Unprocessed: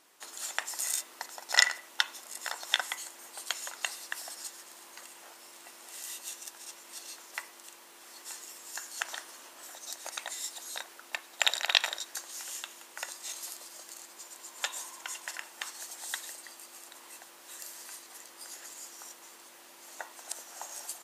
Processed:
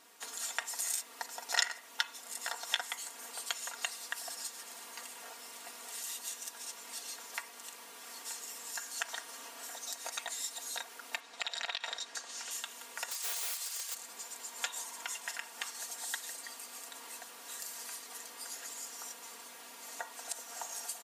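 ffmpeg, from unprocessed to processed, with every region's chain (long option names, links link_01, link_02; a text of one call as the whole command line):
ffmpeg -i in.wav -filter_complex "[0:a]asettb=1/sr,asplit=3[link_01][link_02][link_03];[link_01]atrim=end=11.204[link_04];[link_02]atrim=start=11.2:end=12.51,asetpts=PTS-STARTPTS,afade=type=in:duration=0.004:curve=qsin,afade=type=out:start_time=1.306:duration=0.004:curve=qsin,lowpass=6600,acompressor=threshold=-29dB:ratio=12:attack=3.2:release=140:knee=1:detection=peak[link_05];[link_03]atrim=start=12.506[link_06];[link_04][link_05]acrossfade=duration=0.004:curve1=hsin:curve2=qsin[link_07];[link_07][link_06]acrossfade=duration=0.004:curve1=qsin:curve2=hsin,asettb=1/sr,asplit=3[link_08][link_09][link_10];[link_08]atrim=end=13.114[link_11];[link_09]atrim=start=13.11:end=13.95,asetpts=PTS-STARTPTS,afade=type=in:duration=0.004:curve=qsin,afade=type=out:start_time=0.836:duration=0.004:curve=qsin,tiltshelf=frequency=1100:gain=-9.5,aeval=exprs='(mod(29.9*val(0)+1,2)-1)/29.9':channel_layout=same,highpass=frequency=450:width=0.5412,highpass=frequency=450:width=1.3066[link_12];[link_10]atrim=start=13.946[link_13];[link_11][link_12]acrossfade=duration=0.004:curve1=hsin:curve2=qsin[link_14];[link_14][link_13]acrossfade=duration=0.004:curve1=qsin:curve2=hsin,aecho=1:1:4.3:0.78,acompressor=threshold=-43dB:ratio=1.5,volume=1dB" out.wav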